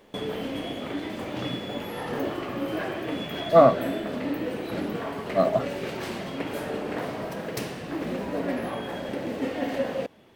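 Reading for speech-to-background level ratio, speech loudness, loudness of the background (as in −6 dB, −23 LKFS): 10.0 dB, −21.5 LKFS, −31.5 LKFS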